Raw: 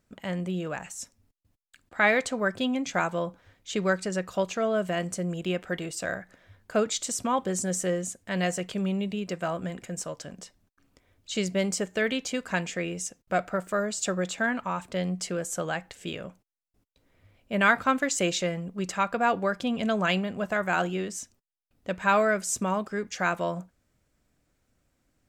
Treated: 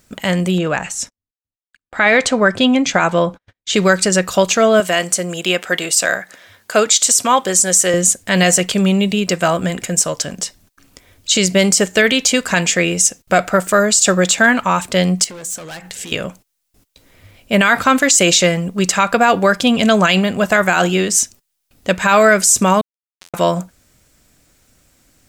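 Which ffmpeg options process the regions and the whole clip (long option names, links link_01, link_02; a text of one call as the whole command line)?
ffmpeg -i in.wav -filter_complex "[0:a]asettb=1/sr,asplit=3[link_01][link_02][link_03];[link_01]atrim=end=0.584[link_04];[link_02]atrim=start=0.58:end=3.74,asetpts=PTS-STARTPTS,afade=type=in:duration=0.004:curve=qsin,afade=type=out:start_time=3.156:duration=0.004:curve=qsin,agate=range=-40dB:threshold=-54dB:ratio=16:release=100:detection=peak,aemphasis=mode=reproduction:type=50fm[link_05];[link_03]atrim=start=3.736[link_06];[link_04][link_05]acrossfade=duration=0.004:curve1=hsin:curve2=qsin[link_07];[link_07][link_06]acrossfade=duration=0.004:curve1=qsin:curve2=hsin,asettb=1/sr,asplit=3[link_08][link_09][link_10];[link_08]atrim=end=4.804[link_11];[link_09]atrim=start=4.8:end=7.94,asetpts=PTS-STARTPTS,afade=type=in:duration=0.004:curve=qsin,afade=type=out:start_time=3.136:duration=0.004:curve=qsin,highpass=frequency=500:poles=1,deesser=0.35[link_12];[link_10]atrim=start=7.936[link_13];[link_11][link_12]acrossfade=duration=0.004:curve1=hsin:curve2=qsin[link_14];[link_14][link_13]acrossfade=duration=0.004:curve1=qsin:curve2=hsin,asettb=1/sr,asplit=3[link_15][link_16][link_17];[link_15]atrim=end=15.244[link_18];[link_16]atrim=start=15.24:end=16.12,asetpts=PTS-STARTPTS,afade=type=in:duration=0.004:curve=qsin,afade=type=out:start_time=0.876:duration=0.004:curve=qsin,volume=32.5dB,asoftclip=hard,volume=-32.5dB,bandreject=frequency=60:width_type=h:width=6,bandreject=frequency=120:width_type=h:width=6,bandreject=frequency=180:width_type=h:width=6,bandreject=frequency=240:width_type=h:width=6,bandreject=frequency=300:width_type=h:width=6,bandreject=frequency=360:width_type=h:width=6,bandreject=frequency=420:width_type=h:width=6,acompressor=threshold=-45dB:ratio=12:attack=3.2:release=140:knee=1:detection=peak[link_19];[link_17]atrim=start=16.116[link_20];[link_18][link_19]acrossfade=duration=0.004:curve1=hsin:curve2=qsin[link_21];[link_21][link_20]acrossfade=duration=0.004:curve1=qsin:curve2=hsin,asettb=1/sr,asplit=3[link_22][link_23][link_24];[link_22]atrim=end=22.814[link_25];[link_23]atrim=start=22.81:end=23.34,asetpts=PTS-STARTPTS,afade=type=in:duration=0.004:curve=qsin,afade=type=out:start_time=0.526:duration=0.004:curve=qsin,highpass=110,acompressor=threshold=-26dB:ratio=20:attack=3.2:release=140:knee=1:detection=peak,acrusher=bits=2:mix=0:aa=0.5[link_26];[link_24]atrim=start=23.336[link_27];[link_25][link_26]acrossfade=duration=0.004:curve1=hsin:curve2=qsin[link_28];[link_28][link_27]acrossfade=duration=0.004:curve1=qsin:curve2=hsin,highshelf=frequency=2800:gain=10.5,alimiter=level_in=15dB:limit=-1dB:release=50:level=0:latency=1,volume=-1dB" out.wav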